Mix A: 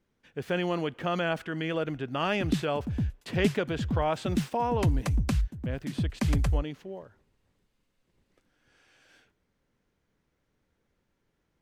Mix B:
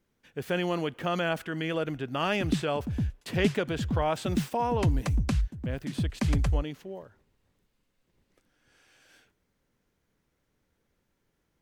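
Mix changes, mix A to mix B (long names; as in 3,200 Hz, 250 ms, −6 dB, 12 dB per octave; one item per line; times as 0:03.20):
background: add high-frequency loss of the air 59 metres
master: add high-shelf EQ 8,900 Hz +11.5 dB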